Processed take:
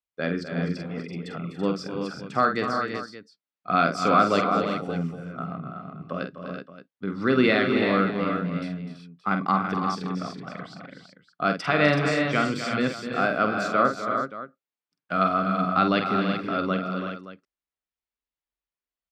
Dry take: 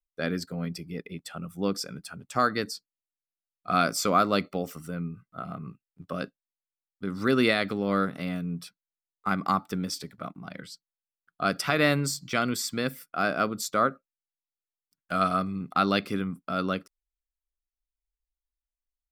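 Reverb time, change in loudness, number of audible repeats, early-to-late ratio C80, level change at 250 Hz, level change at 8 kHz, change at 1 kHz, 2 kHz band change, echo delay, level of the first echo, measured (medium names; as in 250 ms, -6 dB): no reverb, +3.0 dB, 6, no reverb, +4.0 dB, -9.5 dB, +4.5 dB, +4.0 dB, 47 ms, -7.5 dB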